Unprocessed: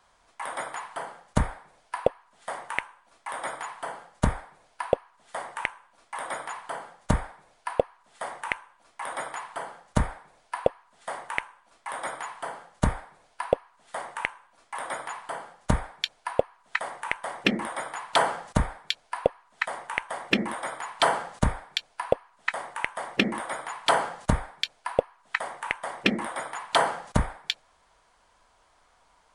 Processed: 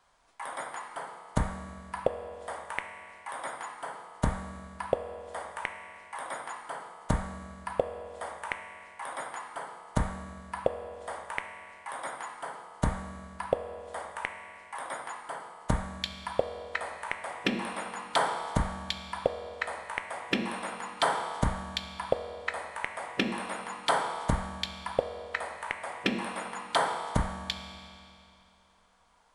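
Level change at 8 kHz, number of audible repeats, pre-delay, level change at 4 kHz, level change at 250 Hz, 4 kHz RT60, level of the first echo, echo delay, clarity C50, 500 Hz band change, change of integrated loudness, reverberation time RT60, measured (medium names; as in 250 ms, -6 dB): -3.5 dB, no echo, 5 ms, -4.5 dB, -3.5 dB, 2.4 s, no echo, no echo, 7.0 dB, -3.5 dB, -4.0 dB, 2.6 s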